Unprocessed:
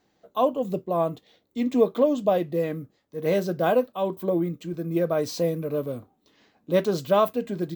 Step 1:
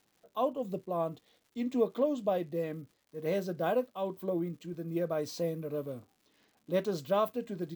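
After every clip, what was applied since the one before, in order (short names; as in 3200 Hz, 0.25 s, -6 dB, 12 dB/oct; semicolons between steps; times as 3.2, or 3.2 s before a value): crackle 250/s -47 dBFS; gain -8.5 dB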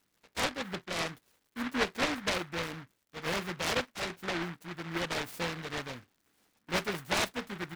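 noise-modulated delay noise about 1400 Hz, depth 0.37 ms; gain -2 dB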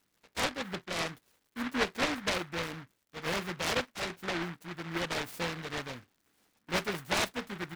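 nothing audible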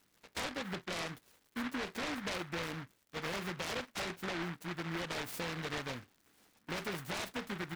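limiter -30 dBFS, peak gain reduction 11.5 dB; compressor 2.5:1, threshold -41 dBFS, peak gain reduction 5.5 dB; gain +3.5 dB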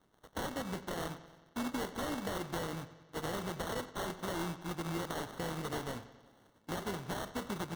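treble ducked by the level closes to 2900 Hz, closed at -36 dBFS; sample-and-hold 18×; analogue delay 91 ms, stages 4096, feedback 63%, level -15.5 dB; gain +1.5 dB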